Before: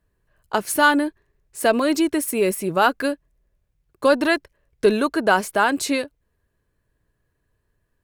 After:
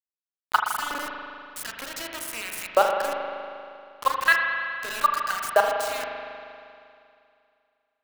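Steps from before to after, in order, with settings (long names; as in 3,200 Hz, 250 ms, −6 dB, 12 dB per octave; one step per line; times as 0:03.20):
parametric band 290 Hz −12 dB 1.6 octaves
downward compressor 3 to 1, threshold −23 dBFS, peak gain reduction 9 dB
auto-filter high-pass saw up 1.1 Hz 450–2,100 Hz
output level in coarse steps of 20 dB
bit reduction 6 bits
spring reverb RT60 2.5 s, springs 39 ms, chirp 70 ms, DRR 1.5 dB
level +4.5 dB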